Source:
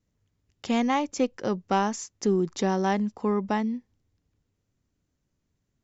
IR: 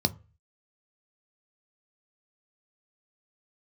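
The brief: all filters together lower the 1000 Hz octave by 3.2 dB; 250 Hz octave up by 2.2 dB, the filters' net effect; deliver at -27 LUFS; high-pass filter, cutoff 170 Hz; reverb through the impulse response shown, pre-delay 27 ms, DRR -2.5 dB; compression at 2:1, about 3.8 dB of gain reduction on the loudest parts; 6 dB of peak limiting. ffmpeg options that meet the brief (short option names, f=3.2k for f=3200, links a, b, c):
-filter_complex "[0:a]highpass=170,equalizer=f=250:t=o:g=4.5,equalizer=f=1k:t=o:g=-4.5,acompressor=threshold=-25dB:ratio=2,alimiter=limit=-20dB:level=0:latency=1,asplit=2[a][b];[1:a]atrim=start_sample=2205,adelay=27[c];[b][c]afir=irnorm=-1:irlink=0,volume=-6dB[d];[a][d]amix=inputs=2:normalize=0,volume=-7.5dB"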